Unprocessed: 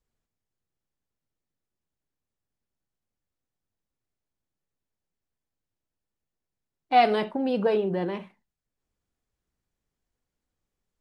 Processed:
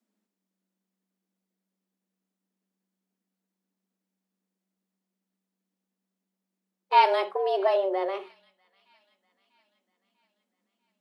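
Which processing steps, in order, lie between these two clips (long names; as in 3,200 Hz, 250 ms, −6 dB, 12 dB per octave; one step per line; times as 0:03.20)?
frequency shifter +190 Hz
delay with a high-pass on its return 644 ms, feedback 53%, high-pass 2,000 Hz, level −24 dB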